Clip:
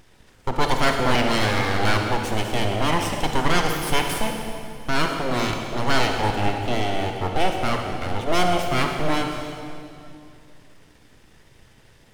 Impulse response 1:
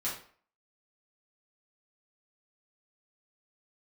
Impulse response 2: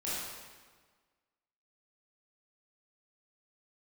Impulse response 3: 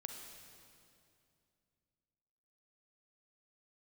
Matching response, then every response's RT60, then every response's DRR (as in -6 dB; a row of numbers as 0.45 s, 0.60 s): 3; 0.50 s, 1.5 s, 2.5 s; -8.5 dB, -10.0 dB, 3.0 dB